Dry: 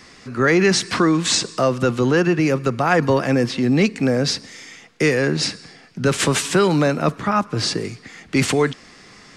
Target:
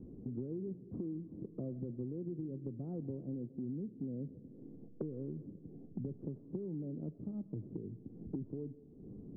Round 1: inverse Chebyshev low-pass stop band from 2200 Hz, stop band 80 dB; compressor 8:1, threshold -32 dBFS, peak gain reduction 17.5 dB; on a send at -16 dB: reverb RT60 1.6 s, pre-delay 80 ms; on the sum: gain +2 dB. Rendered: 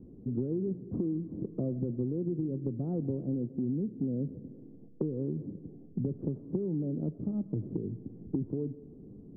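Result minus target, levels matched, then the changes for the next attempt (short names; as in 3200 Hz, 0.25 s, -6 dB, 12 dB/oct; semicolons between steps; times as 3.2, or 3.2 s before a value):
compressor: peak gain reduction -9 dB
change: compressor 8:1, threshold -42 dBFS, peak gain reduction 26 dB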